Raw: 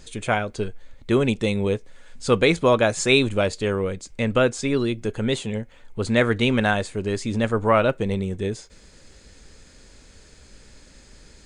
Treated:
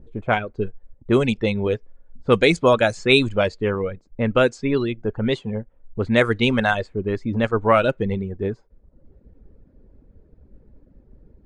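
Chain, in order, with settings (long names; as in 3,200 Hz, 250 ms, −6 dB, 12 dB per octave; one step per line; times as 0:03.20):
low-pass that shuts in the quiet parts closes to 390 Hz, open at −13.5 dBFS
reverb reduction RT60 0.75 s
level +2.5 dB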